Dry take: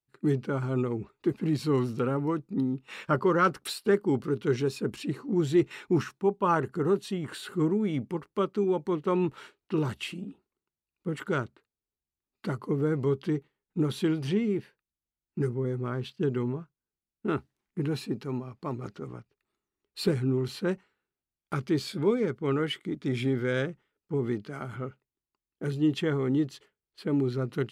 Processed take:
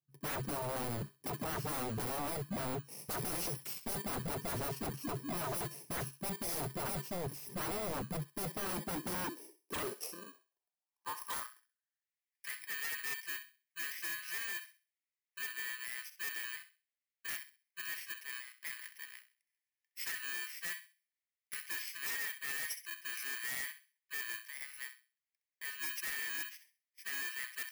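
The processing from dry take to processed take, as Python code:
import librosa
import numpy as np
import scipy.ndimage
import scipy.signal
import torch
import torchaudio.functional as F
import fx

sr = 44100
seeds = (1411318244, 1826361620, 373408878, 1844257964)

p1 = fx.bit_reversed(x, sr, seeds[0], block=32)
p2 = fx.low_shelf(p1, sr, hz=140.0, db=7.0)
p3 = p2 + fx.echo_thinned(p2, sr, ms=65, feedback_pct=29, hz=1100.0, wet_db=-11, dry=0)
p4 = fx.filter_sweep_highpass(p3, sr, from_hz=140.0, to_hz=2000.0, start_s=8.27, end_s=12.19, q=5.2)
p5 = 10.0 ** (-26.0 / 20.0) * (np.abs((p4 / 10.0 ** (-26.0 / 20.0) + 3.0) % 4.0 - 2.0) - 1.0)
y = p5 * 10.0 ** (-7.0 / 20.0)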